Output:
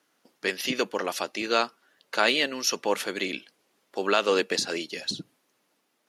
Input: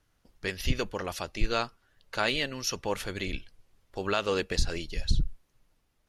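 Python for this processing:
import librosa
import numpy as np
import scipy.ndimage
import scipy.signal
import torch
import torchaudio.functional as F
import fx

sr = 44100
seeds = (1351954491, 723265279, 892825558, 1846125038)

y = scipy.signal.sosfilt(scipy.signal.butter(4, 230.0, 'highpass', fs=sr, output='sos'), x)
y = y * librosa.db_to_amplitude(5.5)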